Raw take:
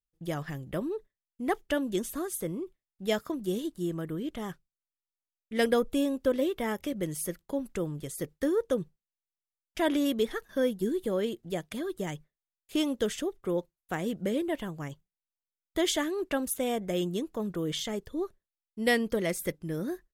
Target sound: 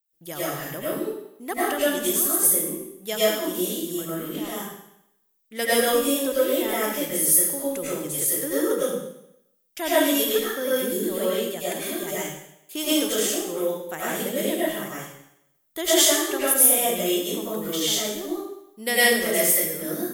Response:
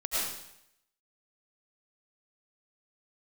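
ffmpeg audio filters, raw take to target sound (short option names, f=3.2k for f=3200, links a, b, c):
-filter_complex "[0:a]aemphasis=mode=production:type=bsi[a];[1:a]atrim=start_sample=2205[b];[a][b]afir=irnorm=-1:irlink=0"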